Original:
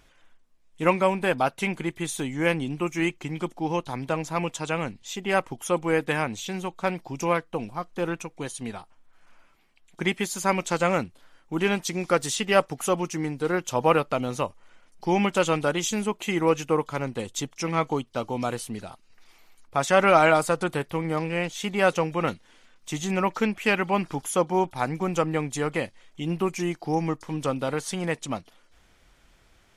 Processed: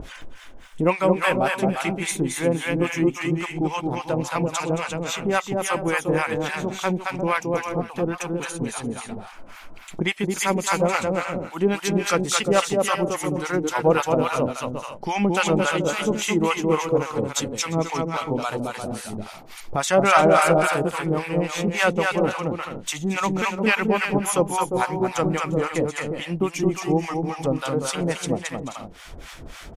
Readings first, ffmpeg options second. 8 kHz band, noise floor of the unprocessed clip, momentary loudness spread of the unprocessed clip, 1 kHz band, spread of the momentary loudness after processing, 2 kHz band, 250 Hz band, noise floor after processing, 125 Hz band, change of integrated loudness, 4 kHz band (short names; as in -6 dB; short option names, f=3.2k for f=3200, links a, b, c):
+5.0 dB, -60 dBFS, 10 LU, +3.0 dB, 10 LU, +3.5 dB, +4.0 dB, -42 dBFS, +4.0 dB, +3.0 dB, +4.0 dB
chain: -filter_complex "[0:a]aecho=1:1:220|352|431.2|478.7|507.2:0.631|0.398|0.251|0.158|0.1,acompressor=mode=upward:threshold=-25dB:ratio=2.5,acrossover=split=760[a][b];[a]aeval=exprs='val(0)*(1-1/2+1/2*cos(2*PI*3.6*n/s))':c=same[c];[b]aeval=exprs='val(0)*(1-1/2-1/2*cos(2*PI*3.6*n/s))':c=same[d];[c][d]amix=inputs=2:normalize=0,volume=6dB"